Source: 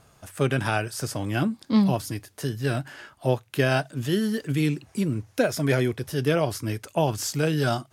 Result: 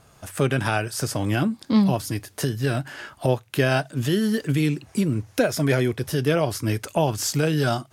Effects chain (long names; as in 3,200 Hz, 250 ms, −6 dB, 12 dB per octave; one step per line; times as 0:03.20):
camcorder AGC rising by 15 dB per second
level +1.5 dB